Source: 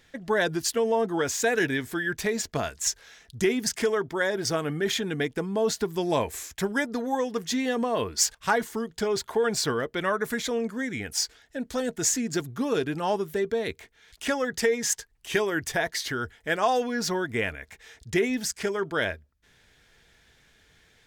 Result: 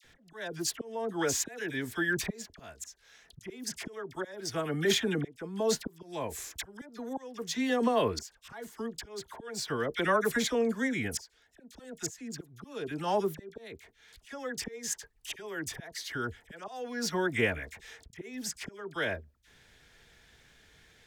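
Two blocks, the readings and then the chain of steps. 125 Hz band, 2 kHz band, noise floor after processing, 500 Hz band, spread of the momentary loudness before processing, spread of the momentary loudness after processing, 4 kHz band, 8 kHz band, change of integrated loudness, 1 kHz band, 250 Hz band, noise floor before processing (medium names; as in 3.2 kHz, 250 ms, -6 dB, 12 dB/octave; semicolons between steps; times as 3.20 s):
-4.5 dB, -6.0 dB, -65 dBFS, -7.5 dB, 7 LU, 18 LU, -5.5 dB, -7.5 dB, -6.0 dB, -7.0 dB, -5.5 dB, -62 dBFS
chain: slow attack 665 ms; phase dispersion lows, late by 46 ms, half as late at 1.4 kHz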